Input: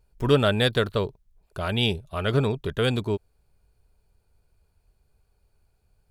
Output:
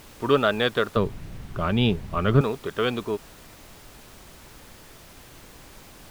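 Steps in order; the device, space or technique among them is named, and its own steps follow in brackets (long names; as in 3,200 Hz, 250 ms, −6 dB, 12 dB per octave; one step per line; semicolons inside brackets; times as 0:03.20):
horn gramophone (band-pass filter 210–3,700 Hz; parametric band 1,200 Hz +8 dB 0.29 octaves; tape wow and flutter; pink noise bed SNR 18 dB)
0:00.96–0:02.41: bass and treble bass +15 dB, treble −6 dB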